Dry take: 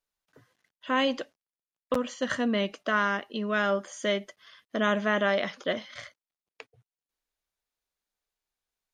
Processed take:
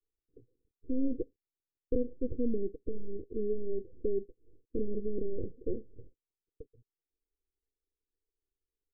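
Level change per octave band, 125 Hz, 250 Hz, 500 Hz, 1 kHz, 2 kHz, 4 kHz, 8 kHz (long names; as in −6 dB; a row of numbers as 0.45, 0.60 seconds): −5.0 dB, −5.0 dB, −6.0 dB, below −40 dB, below −40 dB, below −40 dB, below −30 dB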